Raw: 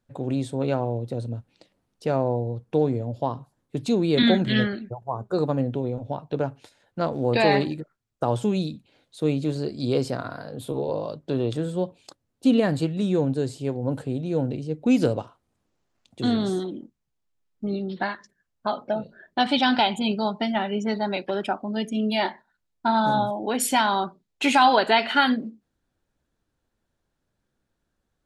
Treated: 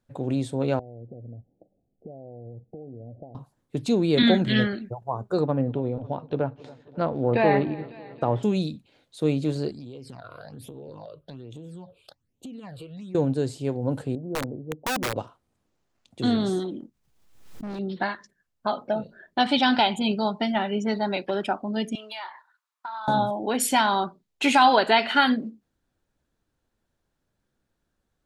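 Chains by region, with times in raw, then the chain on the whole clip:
0.79–3.35 s: compression 10:1, threshold -37 dBFS + steep low-pass 780 Hz 96 dB/octave
5.40–8.43 s: feedback echo behind a low-pass 274 ms, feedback 67%, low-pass 3.5 kHz, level -21 dB + low-pass that closes with the level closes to 2.2 kHz, closed at -19 dBFS + distance through air 96 m
9.71–13.15 s: phase shifter stages 8, 1.2 Hz, lowest notch 230–1600 Hz + compression 10:1, threshold -37 dBFS
14.15–15.16 s: Bessel low-pass 650 Hz, order 6 + bass shelf 300 Hz -8.5 dB + integer overflow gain 21.5 dB
16.79–17.79 s: hard clipper -32 dBFS + swell ahead of each attack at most 62 dB/s
21.95–23.08 s: resonant high-pass 1.1 kHz, resonance Q 4.1 + compression 5:1, threshold -34 dBFS
whole clip: none

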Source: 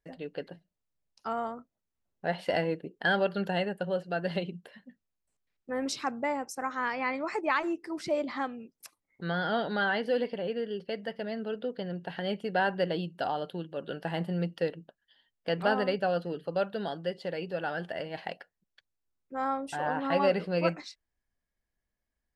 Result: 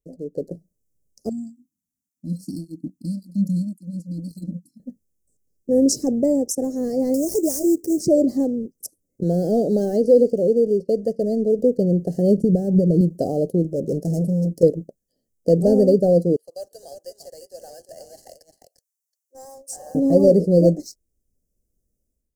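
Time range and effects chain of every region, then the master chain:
1.29–4.80 s: brick-wall FIR band-stop 320–4000 Hz + bass shelf 160 Hz -9.5 dB + cancelling through-zero flanger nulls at 1.8 Hz, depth 2.8 ms
7.14–8.00 s: compression 2:1, threshold -34 dBFS + sample-rate reducer 7.6 kHz, jitter 20%
9.23–11.59 s: low-pass 8.4 kHz + bass shelf 140 Hz -11.5 dB
12.37–13.01 s: compression 4:1, threshold -36 dBFS + tone controls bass +12 dB, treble -2 dB
13.64–14.63 s: bass shelf 130 Hz +10.5 dB + hard clipper -35 dBFS + comb of notches 1.2 kHz
16.36–19.95 s: high-pass 940 Hz 24 dB/octave + delay 349 ms -8.5 dB
whole clip: waveshaping leveller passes 1; level rider gain up to 11.5 dB; inverse Chebyshev band-stop 900–3700 Hz, stop band 40 dB; trim +3 dB

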